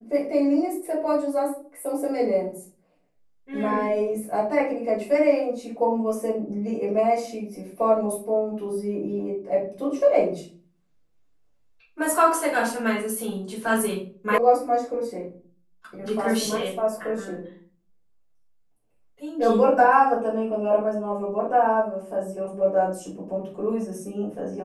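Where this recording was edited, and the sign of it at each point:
14.38 s: sound stops dead

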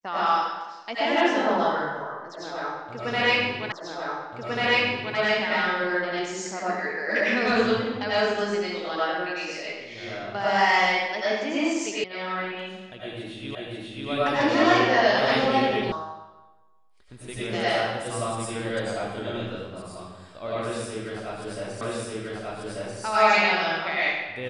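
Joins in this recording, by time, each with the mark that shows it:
3.72 s: repeat of the last 1.44 s
12.04 s: sound stops dead
13.55 s: repeat of the last 0.54 s
15.92 s: sound stops dead
21.81 s: repeat of the last 1.19 s

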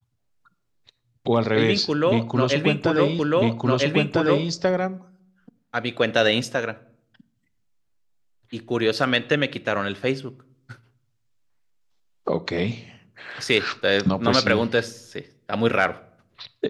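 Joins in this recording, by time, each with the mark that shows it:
3.19 s: repeat of the last 1.3 s

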